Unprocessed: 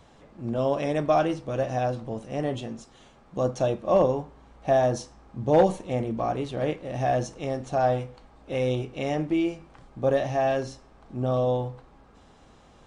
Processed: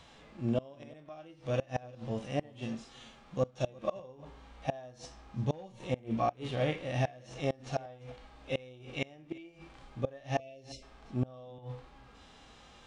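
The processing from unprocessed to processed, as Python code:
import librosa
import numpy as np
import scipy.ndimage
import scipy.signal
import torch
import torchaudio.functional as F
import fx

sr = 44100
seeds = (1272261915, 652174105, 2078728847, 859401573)

p1 = fx.high_shelf(x, sr, hz=6600.0, db=2.5)
p2 = fx.hpss(p1, sr, part='percussive', gain_db=-18)
p3 = fx.peak_eq(p2, sr, hz=3100.0, db=10.0, octaves=2.2)
p4 = fx.spec_erase(p3, sr, start_s=10.39, length_s=0.44, low_hz=710.0, high_hz=2000.0)
p5 = fx.gate_flip(p4, sr, shuts_db=-19.0, range_db=-26)
y = p5 + fx.echo_single(p5, sr, ms=350, db=-23.0, dry=0)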